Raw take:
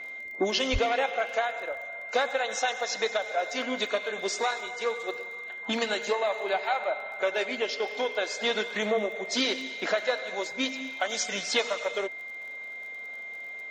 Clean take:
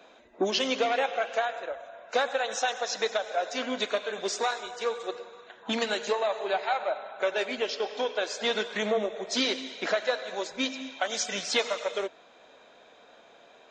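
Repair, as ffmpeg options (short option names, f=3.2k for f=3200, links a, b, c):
-filter_complex "[0:a]adeclick=t=4,bandreject=f=2.1k:w=30,asplit=3[a][b][c];[a]afade=t=out:st=0.72:d=0.02[d];[b]highpass=f=140:w=0.5412,highpass=f=140:w=1.3066,afade=t=in:st=0.72:d=0.02,afade=t=out:st=0.84:d=0.02[e];[c]afade=t=in:st=0.84:d=0.02[f];[d][e][f]amix=inputs=3:normalize=0"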